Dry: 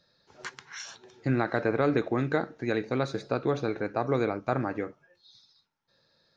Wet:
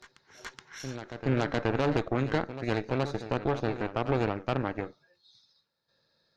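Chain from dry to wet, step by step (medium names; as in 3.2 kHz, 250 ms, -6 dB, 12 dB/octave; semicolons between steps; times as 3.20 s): Chebyshev shaper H 6 -13 dB, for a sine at -11 dBFS; reverse echo 423 ms -11.5 dB; trim -4 dB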